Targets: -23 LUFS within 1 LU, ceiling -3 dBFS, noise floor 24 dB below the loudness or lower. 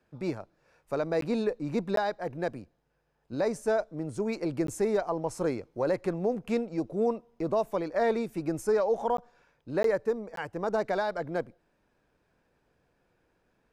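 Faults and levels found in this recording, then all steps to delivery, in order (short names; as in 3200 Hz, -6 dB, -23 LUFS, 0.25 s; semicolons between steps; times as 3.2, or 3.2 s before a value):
dropouts 6; longest dropout 13 ms; loudness -30.5 LUFS; peak -18.0 dBFS; loudness target -23.0 LUFS
-> interpolate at 1.21/1.96/4.67/9.17/9.83/10.36, 13 ms; gain +7.5 dB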